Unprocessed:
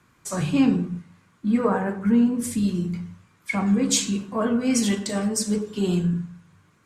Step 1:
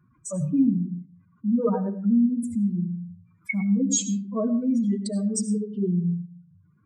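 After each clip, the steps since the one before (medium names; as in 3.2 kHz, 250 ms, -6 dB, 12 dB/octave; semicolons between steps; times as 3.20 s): spectral contrast enhancement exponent 2.7; algorithmic reverb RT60 0.42 s, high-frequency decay 0.65×, pre-delay 50 ms, DRR 12.5 dB; trim -1 dB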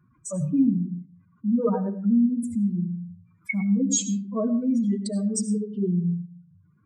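no audible change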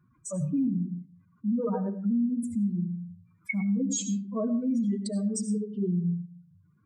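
peak limiter -18 dBFS, peak gain reduction 6 dB; trim -3 dB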